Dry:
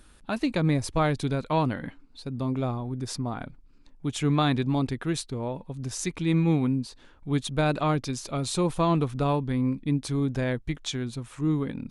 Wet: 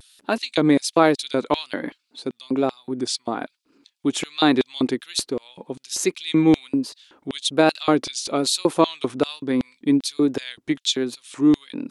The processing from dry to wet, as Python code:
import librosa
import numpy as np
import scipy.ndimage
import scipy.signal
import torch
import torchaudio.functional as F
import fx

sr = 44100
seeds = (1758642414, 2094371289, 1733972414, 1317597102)

y = fx.filter_lfo_highpass(x, sr, shape='square', hz=2.6, low_hz=330.0, high_hz=3600.0, q=1.9)
y = fx.vibrato(y, sr, rate_hz=1.2, depth_cents=66.0)
y = y * 10.0 ** (7.0 / 20.0)